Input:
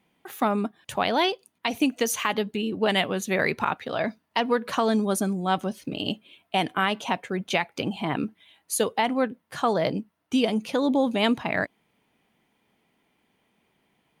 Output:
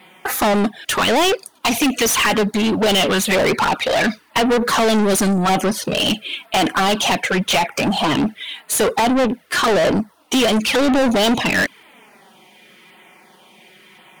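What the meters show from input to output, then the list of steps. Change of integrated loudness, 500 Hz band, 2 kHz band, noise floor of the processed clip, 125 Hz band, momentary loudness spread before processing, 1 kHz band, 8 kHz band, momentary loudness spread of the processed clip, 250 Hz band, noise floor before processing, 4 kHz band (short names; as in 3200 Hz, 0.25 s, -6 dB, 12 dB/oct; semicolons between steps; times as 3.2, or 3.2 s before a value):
+9.0 dB, +8.5 dB, +9.5 dB, -52 dBFS, +8.5 dB, 8 LU, +8.0 dB, +12.5 dB, 5 LU, +8.0 dB, -73 dBFS, +11.5 dB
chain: LFO notch saw down 0.93 Hz 580–6500 Hz; envelope flanger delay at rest 5.5 ms, full sweep at -20.5 dBFS; overdrive pedal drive 33 dB, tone 7900 Hz, clips at -11.5 dBFS; gain +2.5 dB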